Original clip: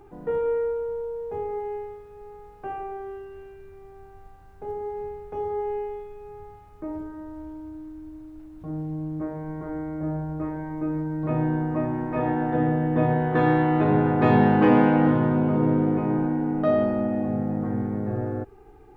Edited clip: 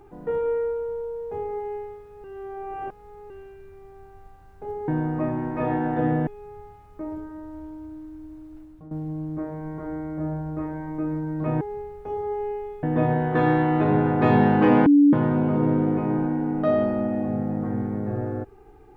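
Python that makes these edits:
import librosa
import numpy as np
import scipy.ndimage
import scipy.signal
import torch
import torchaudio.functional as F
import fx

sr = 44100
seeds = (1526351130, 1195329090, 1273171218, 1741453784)

y = fx.edit(x, sr, fx.reverse_span(start_s=2.24, length_s=1.06),
    fx.swap(start_s=4.88, length_s=1.22, other_s=11.44, other_length_s=1.39),
    fx.fade_out_to(start_s=8.43, length_s=0.31, floor_db=-14.0),
    fx.bleep(start_s=14.86, length_s=0.27, hz=288.0, db=-11.0), tone=tone)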